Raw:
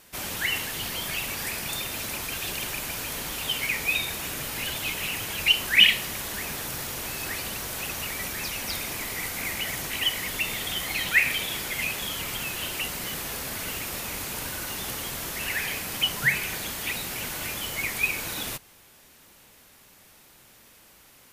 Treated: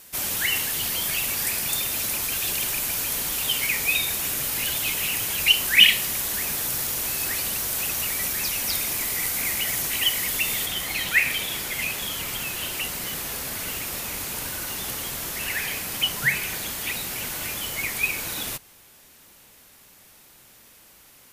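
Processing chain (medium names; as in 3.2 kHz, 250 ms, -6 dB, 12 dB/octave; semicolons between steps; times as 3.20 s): treble shelf 5.1 kHz +10 dB, from 10.66 s +4 dB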